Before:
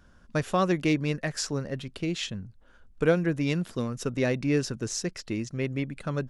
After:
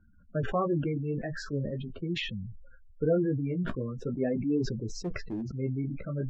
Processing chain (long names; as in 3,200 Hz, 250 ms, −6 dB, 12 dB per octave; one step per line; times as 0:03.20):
gate on every frequency bin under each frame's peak −15 dB strong
low-pass filter 1,400 Hz 12 dB per octave
0:05.00–0:05.41: hard clipping −26.5 dBFS, distortion −29 dB
flanger 0.42 Hz, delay 9.4 ms, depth 6.8 ms, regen −19%
level that may fall only so fast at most 41 dB per second